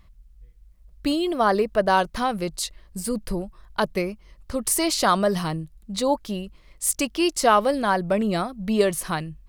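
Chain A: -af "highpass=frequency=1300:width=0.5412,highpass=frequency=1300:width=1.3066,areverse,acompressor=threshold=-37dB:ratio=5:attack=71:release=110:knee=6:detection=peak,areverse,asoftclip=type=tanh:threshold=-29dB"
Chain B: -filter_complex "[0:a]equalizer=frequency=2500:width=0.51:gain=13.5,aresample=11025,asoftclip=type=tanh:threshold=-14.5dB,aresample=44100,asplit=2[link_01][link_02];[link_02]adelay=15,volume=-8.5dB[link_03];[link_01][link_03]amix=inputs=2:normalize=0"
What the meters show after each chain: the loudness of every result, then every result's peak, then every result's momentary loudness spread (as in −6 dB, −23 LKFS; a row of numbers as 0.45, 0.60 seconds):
−37.5, −22.0 LKFS; −29.0, −9.5 dBFS; 10, 11 LU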